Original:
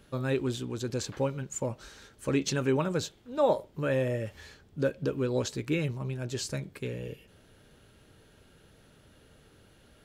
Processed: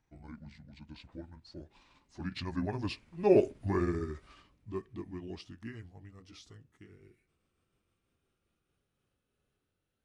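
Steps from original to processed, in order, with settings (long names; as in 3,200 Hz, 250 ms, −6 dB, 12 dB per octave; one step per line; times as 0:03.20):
pitch glide at a constant tempo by −10.5 semitones ending unshifted
source passing by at 0:03.45, 14 m/s, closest 4.2 metres
level +3 dB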